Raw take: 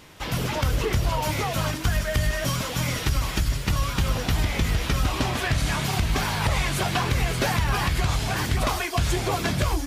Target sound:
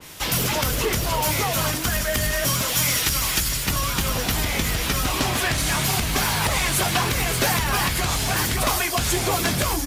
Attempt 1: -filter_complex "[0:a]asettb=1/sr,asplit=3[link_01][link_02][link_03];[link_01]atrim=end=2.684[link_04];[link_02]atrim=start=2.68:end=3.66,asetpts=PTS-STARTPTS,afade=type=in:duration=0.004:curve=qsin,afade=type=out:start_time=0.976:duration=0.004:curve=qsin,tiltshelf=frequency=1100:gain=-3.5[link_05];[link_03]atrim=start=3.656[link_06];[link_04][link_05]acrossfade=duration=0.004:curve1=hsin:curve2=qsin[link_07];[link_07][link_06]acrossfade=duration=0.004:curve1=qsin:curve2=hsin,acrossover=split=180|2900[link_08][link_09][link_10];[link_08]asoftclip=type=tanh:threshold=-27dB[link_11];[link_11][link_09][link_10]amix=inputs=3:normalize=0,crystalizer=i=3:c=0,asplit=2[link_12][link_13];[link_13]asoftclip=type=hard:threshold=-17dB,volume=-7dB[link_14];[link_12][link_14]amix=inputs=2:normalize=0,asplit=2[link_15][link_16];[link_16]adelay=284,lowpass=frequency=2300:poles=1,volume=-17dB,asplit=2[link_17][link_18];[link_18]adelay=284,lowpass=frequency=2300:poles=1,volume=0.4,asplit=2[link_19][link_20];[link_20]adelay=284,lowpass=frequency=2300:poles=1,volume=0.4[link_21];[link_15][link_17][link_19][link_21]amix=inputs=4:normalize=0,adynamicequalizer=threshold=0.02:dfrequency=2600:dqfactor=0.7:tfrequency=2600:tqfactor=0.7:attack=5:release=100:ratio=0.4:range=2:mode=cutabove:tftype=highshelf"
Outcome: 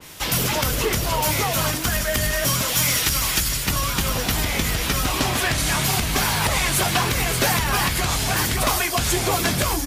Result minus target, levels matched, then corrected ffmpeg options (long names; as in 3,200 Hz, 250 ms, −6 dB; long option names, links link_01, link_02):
hard clipping: distortion −8 dB
-filter_complex "[0:a]asettb=1/sr,asplit=3[link_01][link_02][link_03];[link_01]atrim=end=2.684[link_04];[link_02]atrim=start=2.68:end=3.66,asetpts=PTS-STARTPTS,afade=type=in:duration=0.004:curve=qsin,afade=type=out:start_time=0.976:duration=0.004:curve=qsin,tiltshelf=frequency=1100:gain=-3.5[link_05];[link_03]atrim=start=3.656[link_06];[link_04][link_05]acrossfade=duration=0.004:curve1=hsin:curve2=qsin[link_07];[link_07][link_06]acrossfade=duration=0.004:curve1=qsin:curve2=hsin,acrossover=split=180|2900[link_08][link_09][link_10];[link_08]asoftclip=type=tanh:threshold=-27dB[link_11];[link_11][link_09][link_10]amix=inputs=3:normalize=0,crystalizer=i=3:c=0,asplit=2[link_12][link_13];[link_13]asoftclip=type=hard:threshold=-24.5dB,volume=-7dB[link_14];[link_12][link_14]amix=inputs=2:normalize=0,asplit=2[link_15][link_16];[link_16]adelay=284,lowpass=frequency=2300:poles=1,volume=-17dB,asplit=2[link_17][link_18];[link_18]adelay=284,lowpass=frequency=2300:poles=1,volume=0.4,asplit=2[link_19][link_20];[link_20]adelay=284,lowpass=frequency=2300:poles=1,volume=0.4[link_21];[link_15][link_17][link_19][link_21]amix=inputs=4:normalize=0,adynamicequalizer=threshold=0.02:dfrequency=2600:dqfactor=0.7:tfrequency=2600:tqfactor=0.7:attack=5:release=100:ratio=0.4:range=2:mode=cutabove:tftype=highshelf"